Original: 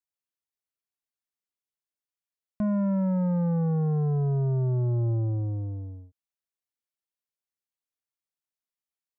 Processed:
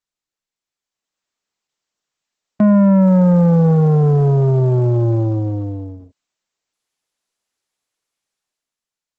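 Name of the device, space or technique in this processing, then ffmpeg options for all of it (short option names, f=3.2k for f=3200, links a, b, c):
video call: -af "highpass=160,dynaudnorm=f=280:g=7:m=14.5dB,volume=1.5dB" -ar 48000 -c:a libopus -b:a 12k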